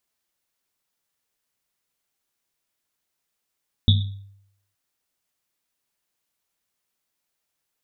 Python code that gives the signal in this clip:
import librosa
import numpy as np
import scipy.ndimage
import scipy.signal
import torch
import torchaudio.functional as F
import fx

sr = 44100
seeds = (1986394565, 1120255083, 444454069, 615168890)

y = fx.risset_drum(sr, seeds[0], length_s=0.87, hz=99.0, decay_s=0.74, noise_hz=3600.0, noise_width_hz=380.0, noise_pct=25)